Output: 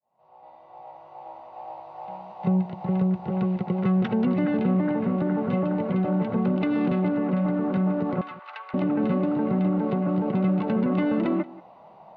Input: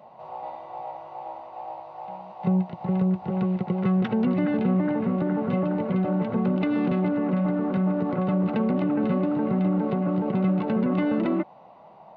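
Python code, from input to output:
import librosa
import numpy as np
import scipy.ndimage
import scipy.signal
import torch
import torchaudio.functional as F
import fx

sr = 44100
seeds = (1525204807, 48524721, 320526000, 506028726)

y = fx.fade_in_head(x, sr, length_s=2.14)
y = fx.cheby2_highpass(y, sr, hz=170.0, order=4, stop_db=80, at=(8.21, 8.74))
y = y + 10.0 ** (-19.5 / 20.0) * np.pad(y, (int(180 * sr / 1000.0), 0))[:len(y)]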